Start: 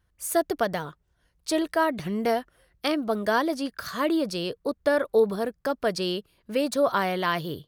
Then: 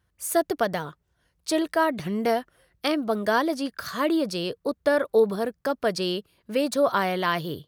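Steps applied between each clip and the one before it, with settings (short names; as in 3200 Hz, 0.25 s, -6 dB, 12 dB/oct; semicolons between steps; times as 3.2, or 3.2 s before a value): HPF 61 Hz; gain +1 dB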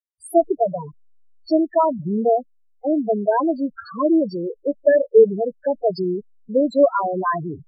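added harmonics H 2 -21 dB, 7 -28 dB, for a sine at -10 dBFS; backlash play -41 dBFS; loudest bins only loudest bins 4; gain +8 dB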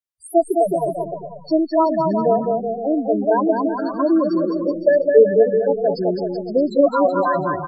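bouncing-ball echo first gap 0.21 s, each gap 0.8×, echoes 5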